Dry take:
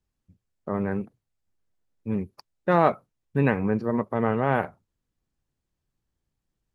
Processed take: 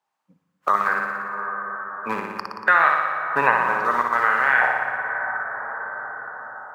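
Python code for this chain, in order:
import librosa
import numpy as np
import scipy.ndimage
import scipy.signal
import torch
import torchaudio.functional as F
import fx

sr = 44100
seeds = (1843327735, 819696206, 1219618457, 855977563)

p1 = fx.filter_lfo_highpass(x, sr, shape='saw_up', hz=0.65, low_hz=840.0, high_hz=1800.0, q=3.7)
p2 = np.where(np.abs(p1) >= 10.0 ** (-37.5 / 20.0), p1, 0.0)
p3 = p1 + F.gain(torch.from_numpy(p2), -6.0).numpy()
p4 = fx.high_shelf(p3, sr, hz=3800.0, db=-9.0)
p5 = p4 + fx.room_flutter(p4, sr, wall_m=10.1, rt60_s=0.91, dry=0)
p6 = fx.noise_reduce_blind(p5, sr, reduce_db=19)
p7 = fx.peak_eq(p6, sr, hz=140.0, db=10.0, octaves=1.3)
p8 = fx.rev_plate(p7, sr, seeds[0], rt60_s=3.9, hf_ratio=0.25, predelay_ms=0, drr_db=12.0)
p9 = fx.band_squash(p8, sr, depth_pct=70)
y = F.gain(torch.from_numpy(p9), 5.0).numpy()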